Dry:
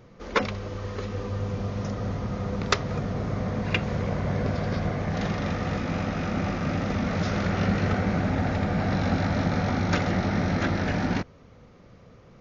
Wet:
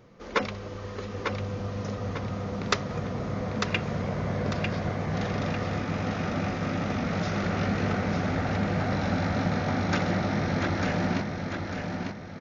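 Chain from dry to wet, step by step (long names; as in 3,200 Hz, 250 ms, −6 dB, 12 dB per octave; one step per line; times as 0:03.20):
low-shelf EQ 85 Hz −7.5 dB
on a send: repeating echo 898 ms, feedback 40%, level −5 dB
on the sum: level −2 dB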